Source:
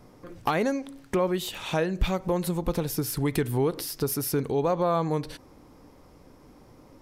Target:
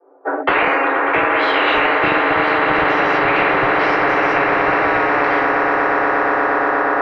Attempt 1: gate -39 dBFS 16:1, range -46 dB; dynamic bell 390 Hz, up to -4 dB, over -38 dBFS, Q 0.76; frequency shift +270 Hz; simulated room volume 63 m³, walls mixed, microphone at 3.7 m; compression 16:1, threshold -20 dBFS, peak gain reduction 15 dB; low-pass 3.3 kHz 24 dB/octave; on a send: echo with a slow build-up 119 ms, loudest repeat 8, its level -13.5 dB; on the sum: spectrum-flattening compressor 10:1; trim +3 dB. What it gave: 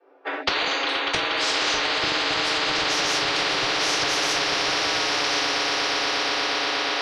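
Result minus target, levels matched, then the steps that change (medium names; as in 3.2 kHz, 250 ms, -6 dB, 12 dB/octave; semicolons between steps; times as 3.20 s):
4 kHz band +14.5 dB; compression: peak gain reduction +6 dB
change: compression 16:1, threshold -13.5 dBFS, peak gain reduction 9 dB; change: low-pass 1.2 kHz 24 dB/octave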